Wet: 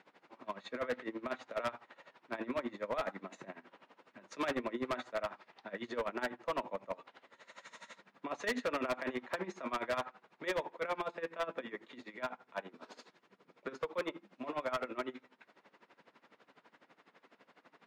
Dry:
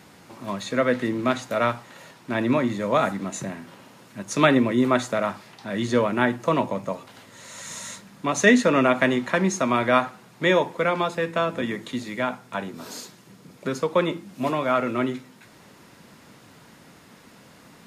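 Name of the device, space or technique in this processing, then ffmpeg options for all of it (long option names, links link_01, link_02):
helicopter radio: -af "highpass=380,lowpass=2800,aeval=exprs='val(0)*pow(10,-19*(0.5-0.5*cos(2*PI*12*n/s))/20)':channel_layout=same,asoftclip=type=hard:threshold=-24.5dB,volume=-5.5dB"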